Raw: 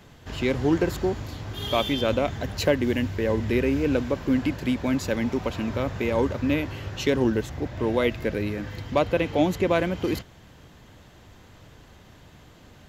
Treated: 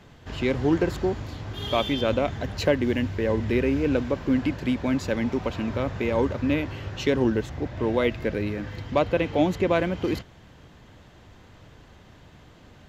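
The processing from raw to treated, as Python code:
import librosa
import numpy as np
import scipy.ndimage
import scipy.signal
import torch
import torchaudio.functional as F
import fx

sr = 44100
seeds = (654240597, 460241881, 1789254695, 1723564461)

y = fx.high_shelf(x, sr, hz=8600.0, db=-12.0)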